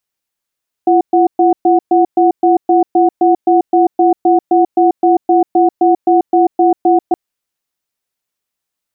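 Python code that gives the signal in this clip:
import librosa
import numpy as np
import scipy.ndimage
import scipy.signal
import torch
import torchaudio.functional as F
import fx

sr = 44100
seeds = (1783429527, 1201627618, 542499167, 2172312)

y = fx.cadence(sr, length_s=6.27, low_hz=342.0, high_hz=736.0, on_s=0.14, off_s=0.12, level_db=-9.0)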